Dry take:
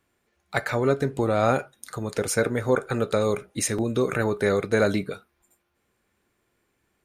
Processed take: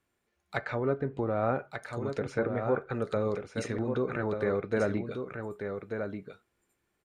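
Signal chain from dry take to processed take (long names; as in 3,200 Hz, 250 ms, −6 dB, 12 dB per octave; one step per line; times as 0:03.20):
treble cut that deepens with the level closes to 1,800 Hz, closed at −20 dBFS
0:00.61–0:02.95: high-shelf EQ 6,200 Hz −9.5 dB
single-tap delay 1,188 ms −6.5 dB
level −7 dB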